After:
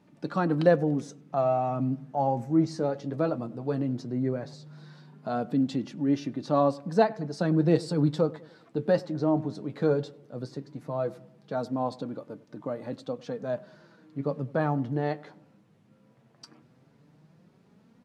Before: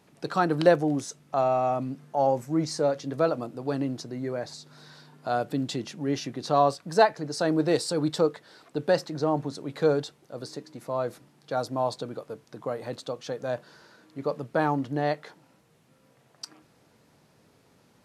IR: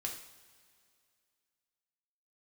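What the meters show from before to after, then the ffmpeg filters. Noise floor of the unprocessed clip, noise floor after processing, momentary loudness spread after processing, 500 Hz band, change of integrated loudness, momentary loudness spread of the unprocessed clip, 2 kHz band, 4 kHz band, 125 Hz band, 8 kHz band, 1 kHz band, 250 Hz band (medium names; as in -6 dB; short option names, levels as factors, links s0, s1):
-62 dBFS, -62 dBFS, 14 LU, -2.0 dB, -1.0 dB, 16 LU, -5.0 dB, -8.5 dB, +3.5 dB, under -10 dB, -4.0 dB, +2.0 dB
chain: -filter_complex "[0:a]lowpass=f=3100:p=1,equalizer=f=180:w=1:g=10,flanger=delay=3.3:depth=6.3:regen=44:speed=0.16:shape=sinusoidal,asplit=2[s0][s1];[s1]adelay=99,lowpass=f=1300:p=1,volume=0.1,asplit=2[s2][s3];[s3]adelay=99,lowpass=f=1300:p=1,volume=0.49,asplit=2[s4][s5];[s5]adelay=99,lowpass=f=1300:p=1,volume=0.49,asplit=2[s6][s7];[s7]adelay=99,lowpass=f=1300:p=1,volume=0.49[s8];[s2][s4][s6][s8]amix=inputs=4:normalize=0[s9];[s0][s9]amix=inputs=2:normalize=0"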